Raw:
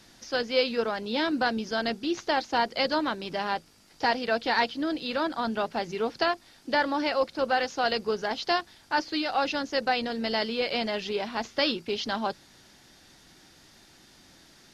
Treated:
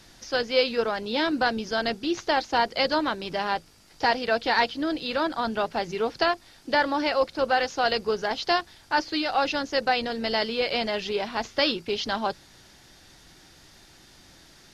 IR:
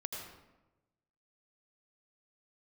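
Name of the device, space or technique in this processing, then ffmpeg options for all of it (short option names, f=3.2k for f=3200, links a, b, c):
low shelf boost with a cut just above: -af "lowshelf=f=93:g=6.5,equalizer=f=230:t=o:w=0.65:g=-4,volume=2.5dB"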